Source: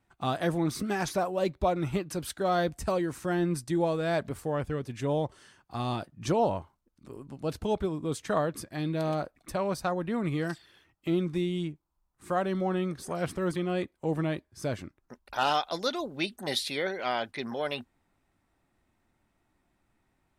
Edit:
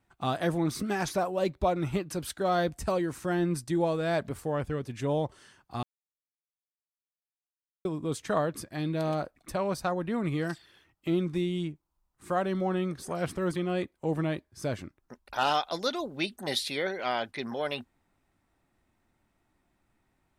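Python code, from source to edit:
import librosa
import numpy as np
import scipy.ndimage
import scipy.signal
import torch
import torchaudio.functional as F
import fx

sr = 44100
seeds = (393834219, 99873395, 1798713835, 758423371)

y = fx.edit(x, sr, fx.silence(start_s=5.83, length_s=2.02), tone=tone)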